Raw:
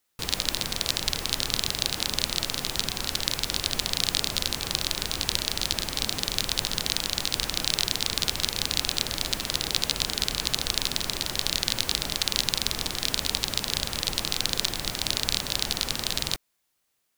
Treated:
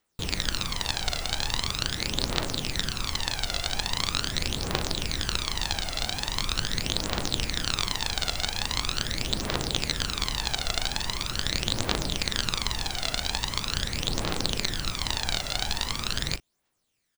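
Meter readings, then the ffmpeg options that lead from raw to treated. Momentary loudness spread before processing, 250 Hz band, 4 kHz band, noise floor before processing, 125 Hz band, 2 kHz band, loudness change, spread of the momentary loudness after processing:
3 LU, +2.0 dB, −2.5 dB, −75 dBFS, +4.0 dB, +1.0 dB, −2.0 dB, 2 LU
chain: -filter_complex "[0:a]aeval=exprs='clip(val(0),-1,0.133)':channel_layout=same,asplit=2[link_01][link_02];[link_02]adelay=39,volume=-14dB[link_03];[link_01][link_03]amix=inputs=2:normalize=0,aphaser=in_gain=1:out_gain=1:delay=1.5:decay=0.58:speed=0.42:type=triangular,equalizer=frequency=15000:width_type=o:width=0.53:gain=-14.5,volume=-1.5dB"

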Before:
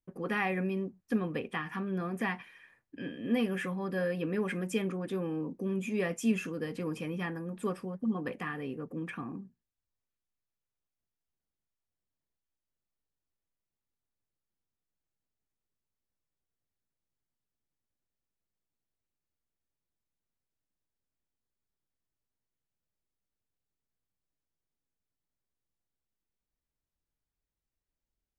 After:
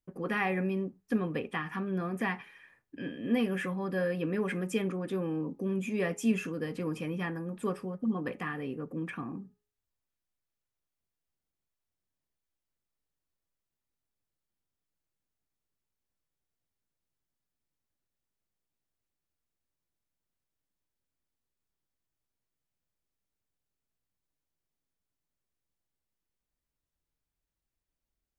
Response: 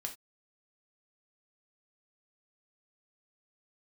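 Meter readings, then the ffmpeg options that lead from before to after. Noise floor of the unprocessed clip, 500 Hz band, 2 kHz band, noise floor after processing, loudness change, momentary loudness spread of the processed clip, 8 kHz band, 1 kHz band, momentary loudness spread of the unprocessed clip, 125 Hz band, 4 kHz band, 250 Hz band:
below −85 dBFS, +1.0 dB, +1.0 dB, below −85 dBFS, +1.0 dB, 8 LU, 0.0 dB, +1.0 dB, 9 LU, +1.5 dB, 0.0 dB, +1.0 dB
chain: -filter_complex "[0:a]bandreject=frequency=416.6:width_type=h:width=4,bandreject=frequency=833.2:width_type=h:width=4,bandreject=frequency=1249.8:width_type=h:width=4,asplit=2[link_01][link_02];[1:a]atrim=start_sample=2205,lowpass=3000[link_03];[link_02][link_03]afir=irnorm=-1:irlink=0,volume=-13dB[link_04];[link_01][link_04]amix=inputs=2:normalize=0"

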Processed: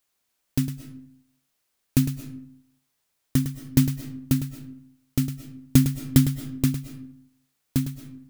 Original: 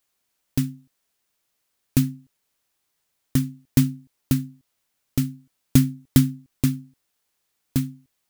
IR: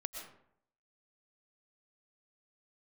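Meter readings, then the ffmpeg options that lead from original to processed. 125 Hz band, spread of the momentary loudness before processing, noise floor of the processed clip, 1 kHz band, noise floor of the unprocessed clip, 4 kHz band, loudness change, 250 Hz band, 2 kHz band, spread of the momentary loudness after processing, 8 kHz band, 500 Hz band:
−0.5 dB, 11 LU, −76 dBFS, −0.5 dB, −75 dBFS, −0.5 dB, −1.0 dB, −1.0 dB, −0.5 dB, 20 LU, −0.5 dB, −0.5 dB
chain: -filter_complex "[0:a]asplit=2[link_01][link_02];[1:a]atrim=start_sample=2205,adelay=106[link_03];[link_02][link_03]afir=irnorm=-1:irlink=0,volume=-7.5dB[link_04];[link_01][link_04]amix=inputs=2:normalize=0,volume=-1dB"

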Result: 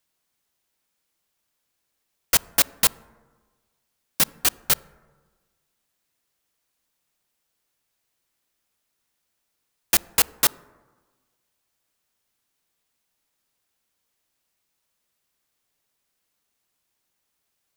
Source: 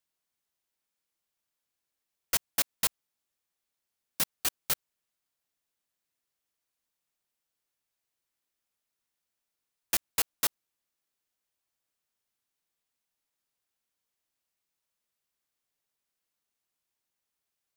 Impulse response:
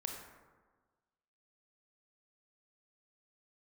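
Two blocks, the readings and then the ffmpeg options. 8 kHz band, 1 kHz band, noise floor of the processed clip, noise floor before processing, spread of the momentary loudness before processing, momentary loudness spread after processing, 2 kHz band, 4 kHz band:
+9.0 dB, +9.5 dB, −77 dBFS, below −85 dBFS, 5 LU, 5 LU, +9.0 dB, +9.0 dB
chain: -filter_complex "[0:a]asplit=2[link_01][link_02];[link_02]lowshelf=frequency=420:gain=7.5[link_03];[1:a]atrim=start_sample=2205,highshelf=frequency=2800:gain=-11[link_04];[link_03][link_04]afir=irnorm=-1:irlink=0,volume=-15.5dB[link_05];[link_01][link_05]amix=inputs=2:normalize=0,volume=8.5dB"

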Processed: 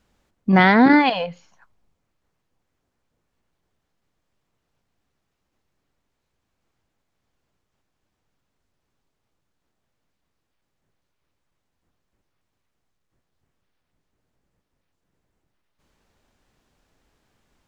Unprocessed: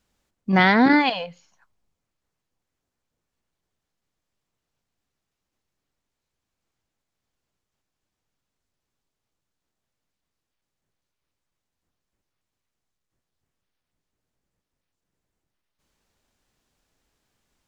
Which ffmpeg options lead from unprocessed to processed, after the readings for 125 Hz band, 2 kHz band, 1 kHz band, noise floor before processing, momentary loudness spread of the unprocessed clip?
+4.0 dB, +1.5 dB, +3.0 dB, −84 dBFS, 21 LU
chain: -filter_complex "[0:a]highshelf=frequency=3400:gain=-8.5,asplit=2[link_01][link_02];[link_02]acompressor=threshold=-27dB:ratio=6,volume=0.5dB[link_03];[link_01][link_03]amix=inputs=2:normalize=0,volume=1.5dB"

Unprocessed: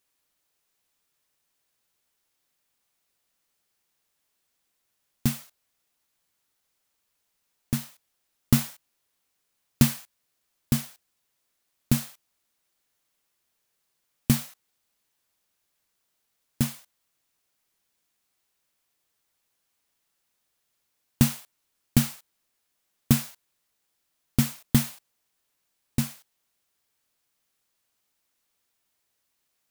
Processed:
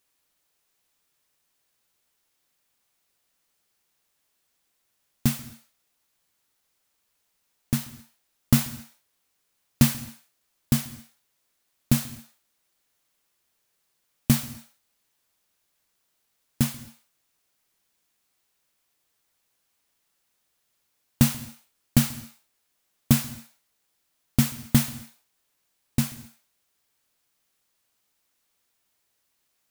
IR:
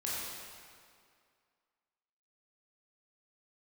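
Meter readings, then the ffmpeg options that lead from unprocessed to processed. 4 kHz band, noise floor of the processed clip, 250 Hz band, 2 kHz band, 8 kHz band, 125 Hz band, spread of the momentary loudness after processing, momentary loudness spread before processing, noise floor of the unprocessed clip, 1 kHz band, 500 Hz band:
+2.0 dB, −74 dBFS, +1.5 dB, +2.0 dB, +2.0 dB, +1.5 dB, 19 LU, 16 LU, −77 dBFS, +2.0 dB, +0.5 dB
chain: -filter_complex "[0:a]asoftclip=type=tanh:threshold=-7dB,asplit=2[link_01][link_02];[1:a]atrim=start_sample=2205,atrim=end_sample=6174,adelay=137[link_03];[link_02][link_03]afir=irnorm=-1:irlink=0,volume=-20dB[link_04];[link_01][link_04]amix=inputs=2:normalize=0,volume=2.5dB"

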